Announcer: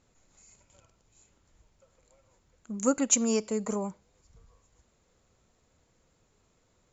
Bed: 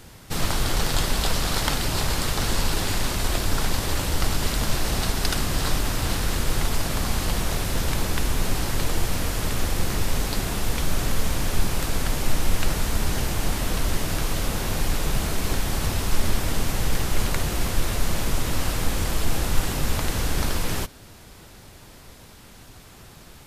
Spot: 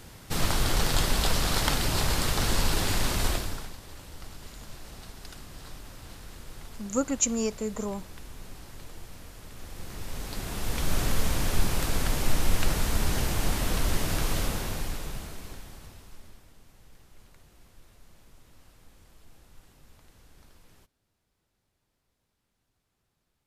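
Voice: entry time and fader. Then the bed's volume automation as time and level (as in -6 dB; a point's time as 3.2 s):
4.10 s, -1.5 dB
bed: 3.28 s -2 dB
3.77 s -20.5 dB
9.49 s -20.5 dB
10.95 s -2.5 dB
14.4 s -2.5 dB
16.54 s -32 dB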